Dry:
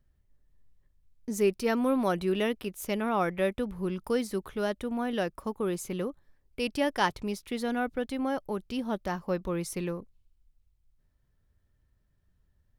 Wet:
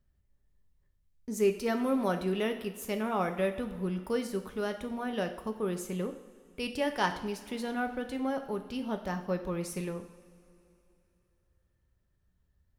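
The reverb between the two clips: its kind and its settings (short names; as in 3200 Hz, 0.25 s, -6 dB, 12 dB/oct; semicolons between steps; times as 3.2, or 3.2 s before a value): two-slope reverb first 0.65 s, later 3.2 s, from -17 dB, DRR 5.5 dB; gain -3.5 dB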